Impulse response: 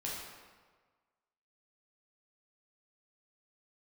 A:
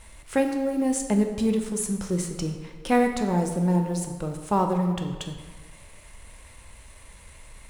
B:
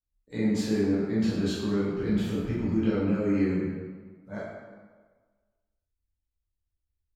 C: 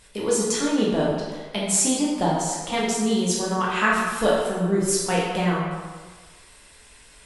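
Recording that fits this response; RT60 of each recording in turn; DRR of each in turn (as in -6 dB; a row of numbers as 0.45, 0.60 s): C; 1.5, 1.5, 1.5 s; 4.0, -10.0, -5.5 dB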